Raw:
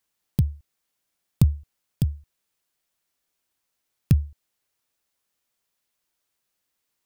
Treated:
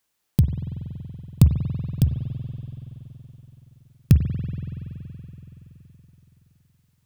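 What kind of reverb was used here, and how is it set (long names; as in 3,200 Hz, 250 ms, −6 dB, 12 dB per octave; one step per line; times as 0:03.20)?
spring reverb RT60 4 s, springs 47 ms, chirp 70 ms, DRR 5.5 dB
level +3.5 dB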